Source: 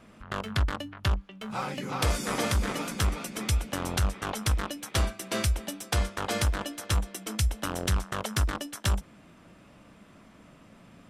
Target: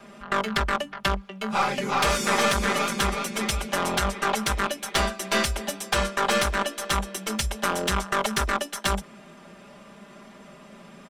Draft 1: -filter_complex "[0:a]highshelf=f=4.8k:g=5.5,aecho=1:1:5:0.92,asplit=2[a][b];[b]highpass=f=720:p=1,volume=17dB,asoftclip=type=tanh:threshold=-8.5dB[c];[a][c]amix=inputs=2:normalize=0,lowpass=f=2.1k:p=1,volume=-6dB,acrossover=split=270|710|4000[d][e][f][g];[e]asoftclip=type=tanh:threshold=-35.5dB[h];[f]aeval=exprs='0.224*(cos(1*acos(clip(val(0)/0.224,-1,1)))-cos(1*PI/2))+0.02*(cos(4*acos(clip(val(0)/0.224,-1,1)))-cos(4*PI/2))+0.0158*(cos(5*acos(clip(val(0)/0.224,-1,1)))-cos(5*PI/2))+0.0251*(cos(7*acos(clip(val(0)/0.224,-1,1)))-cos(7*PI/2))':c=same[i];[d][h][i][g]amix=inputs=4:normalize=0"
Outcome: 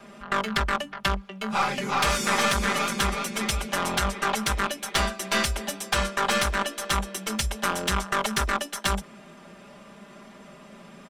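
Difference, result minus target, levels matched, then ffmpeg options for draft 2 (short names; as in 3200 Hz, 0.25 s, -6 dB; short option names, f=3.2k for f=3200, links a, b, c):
soft clip: distortion +13 dB
-filter_complex "[0:a]highshelf=f=4.8k:g=5.5,aecho=1:1:5:0.92,asplit=2[a][b];[b]highpass=f=720:p=1,volume=17dB,asoftclip=type=tanh:threshold=-8.5dB[c];[a][c]amix=inputs=2:normalize=0,lowpass=f=2.1k:p=1,volume=-6dB,acrossover=split=270|710|4000[d][e][f][g];[e]asoftclip=type=tanh:threshold=-23.5dB[h];[f]aeval=exprs='0.224*(cos(1*acos(clip(val(0)/0.224,-1,1)))-cos(1*PI/2))+0.02*(cos(4*acos(clip(val(0)/0.224,-1,1)))-cos(4*PI/2))+0.0158*(cos(5*acos(clip(val(0)/0.224,-1,1)))-cos(5*PI/2))+0.0251*(cos(7*acos(clip(val(0)/0.224,-1,1)))-cos(7*PI/2))':c=same[i];[d][h][i][g]amix=inputs=4:normalize=0"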